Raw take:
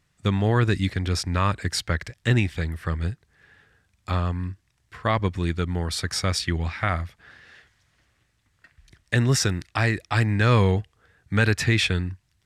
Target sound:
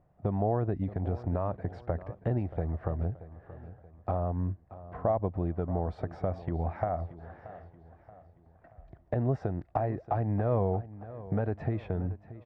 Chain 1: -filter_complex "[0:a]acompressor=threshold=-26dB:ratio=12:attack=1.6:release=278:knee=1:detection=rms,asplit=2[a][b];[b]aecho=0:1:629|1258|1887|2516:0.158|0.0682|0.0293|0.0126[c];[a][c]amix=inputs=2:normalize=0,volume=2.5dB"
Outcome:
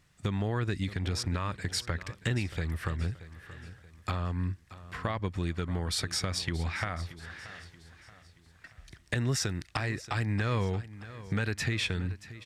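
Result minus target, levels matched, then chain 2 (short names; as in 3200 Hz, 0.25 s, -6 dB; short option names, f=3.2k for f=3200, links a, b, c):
500 Hz band -6.5 dB
-filter_complex "[0:a]acompressor=threshold=-26dB:ratio=12:attack=1.6:release=278:knee=1:detection=rms,lowpass=f=690:t=q:w=4.4,asplit=2[a][b];[b]aecho=0:1:629|1258|1887|2516:0.158|0.0682|0.0293|0.0126[c];[a][c]amix=inputs=2:normalize=0,volume=2.5dB"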